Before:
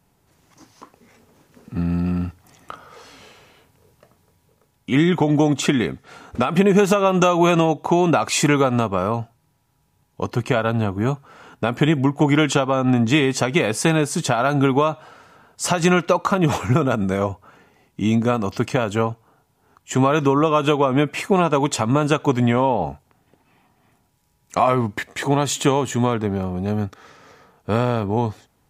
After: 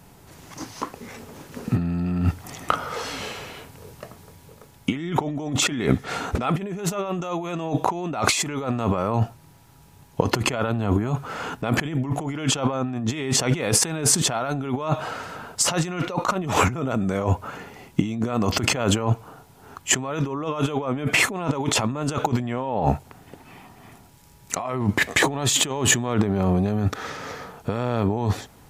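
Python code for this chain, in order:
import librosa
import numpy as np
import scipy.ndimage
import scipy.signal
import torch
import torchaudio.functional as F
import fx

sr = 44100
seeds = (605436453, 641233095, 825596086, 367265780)

y = fx.over_compress(x, sr, threshold_db=-29.0, ratio=-1.0)
y = y * librosa.db_to_amplitude(4.5)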